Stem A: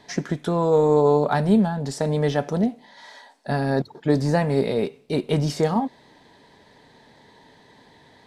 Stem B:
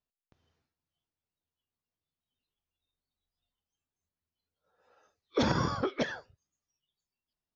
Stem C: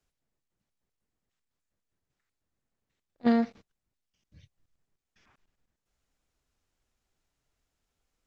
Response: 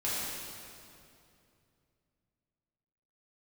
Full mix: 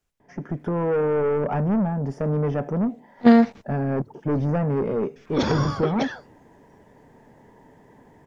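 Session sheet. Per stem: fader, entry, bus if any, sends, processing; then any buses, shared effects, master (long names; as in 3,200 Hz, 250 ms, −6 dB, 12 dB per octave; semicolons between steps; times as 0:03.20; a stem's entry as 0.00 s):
−9.0 dB, 0.20 s, no send, tilt shelving filter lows +4 dB; soft clipping −18 dBFS, distortion −9 dB; moving average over 11 samples
−5.0 dB, 0.00 s, no send, no processing
+2.5 dB, 0.00 s, no send, parametric band 4,400 Hz −3.5 dB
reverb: not used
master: automatic gain control gain up to 8.5 dB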